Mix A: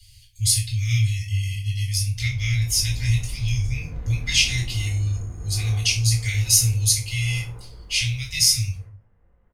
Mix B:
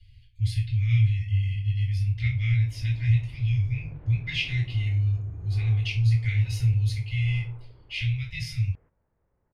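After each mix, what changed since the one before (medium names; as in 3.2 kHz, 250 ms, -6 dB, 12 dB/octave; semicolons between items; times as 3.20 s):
background: send off; master: add distance through air 480 m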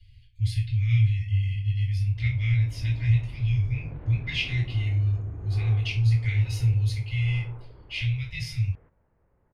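background +6.0 dB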